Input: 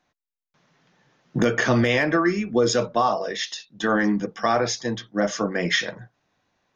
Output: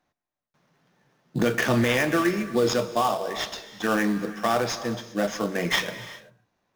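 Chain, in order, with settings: dynamic bell 3 kHz, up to +6 dB, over -37 dBFS, Q 1.1; in parallel at -4.5 dB: sample-rate reducer 4.2 kHz, jitter 20%; on the sum: gated-style reverb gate 420 ms flat, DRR 11.5 dB; trim -6.5 dB

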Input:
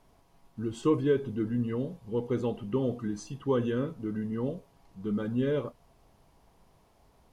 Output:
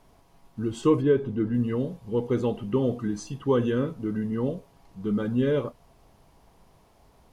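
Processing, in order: 1.01–1.53 s: treble shelf 3 kHz -> 4.9 kHz -10.5 dB; trim +4.5 dB

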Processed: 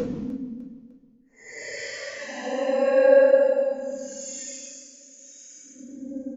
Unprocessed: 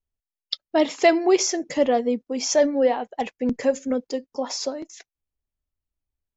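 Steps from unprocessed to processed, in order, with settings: Paulstretch 16×, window 0.05 s, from 3.49 s; spectral noise reduction 9 dB; feedback delay 302 ms, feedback 37%, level -16 dB

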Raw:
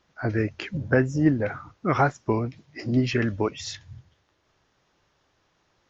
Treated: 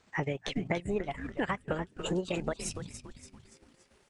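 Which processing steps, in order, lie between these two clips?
gliding tape speed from 127% -> 161%; compression 5:1, threshold -32 dBFS, peak gain reduction 15.5 dB; frequency-shifting echo 286 ms, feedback 48%, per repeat -140 Hz, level -8.5 dB; transient shaper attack +1 dB, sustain -12 dB; trim +1.5 dB

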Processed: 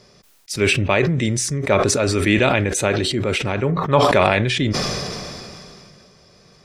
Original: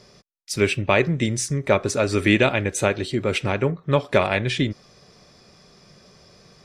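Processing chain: 3.77–4.21 s: peaking EQ 920 Hz +13 dB -> +1 dB 1 oct; decay stretcher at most 22 dB/s

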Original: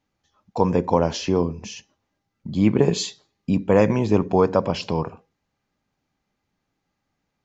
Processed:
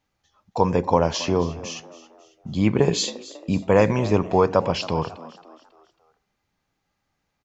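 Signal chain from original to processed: peaking EQ 250 Hz -5.5 dB 1.8 oct; on a send: frequency-shifting echo 273 ms, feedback 43%, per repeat +79 Hz, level -17.5 dB; on the sum: trim +2.5 dB

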